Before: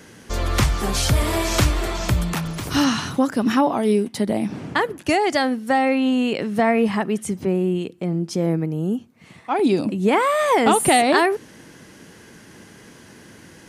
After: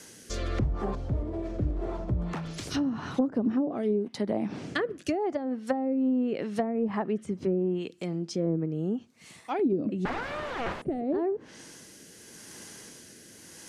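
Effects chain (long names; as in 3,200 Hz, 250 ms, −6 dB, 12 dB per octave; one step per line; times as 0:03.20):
0:00.97–0:02.13: one scale factor per block 3 bits
bass and treble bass −5 dB, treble +13 dB
gain into a clipping stage and back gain 7 dB
rotating-speaker cabinet horn 0.85 Hz
0:10.05–0:10.82: wrap-around overflow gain 18.5 dB
treble cut that deepens with the level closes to 410 Hz, closed at −17 dBFS
level −3.5 dB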